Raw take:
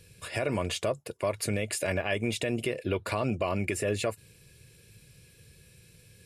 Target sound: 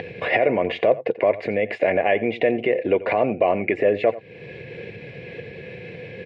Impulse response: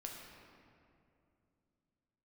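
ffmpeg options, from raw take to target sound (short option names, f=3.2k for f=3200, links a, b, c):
-filter_complex "[0:a]lowshelf=f=400:g=11.5,acompressor=mode=upward:threshold=-24dB:ratio=2.5,alimiter=limit=-18dB:level=0:latency=1:release=299,highpass=300,equalizer=f=490:t=q:w=4:g=7,equalizer=f=740:t=q:w=4:g=10,equalizer=f=1.3k:t=q:w=4:g=-8,equalizer=f=2k:t=q:w=4:g=10,lowpass=f=2.8k:w=0.5412,lowpass=f=2.8k:w=1.3066,asplit=2[a][b];[b]adelay=87.46,volume=-17dB,highshelf=f=4k:g=-1.97[c];[a][c]amix=inputs=2:normalize=0,volume=8.5dB"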